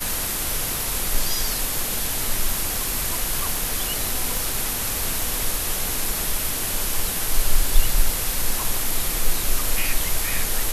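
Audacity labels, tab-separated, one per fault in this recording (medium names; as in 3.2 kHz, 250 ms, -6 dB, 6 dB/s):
4.370000	4.370000	pop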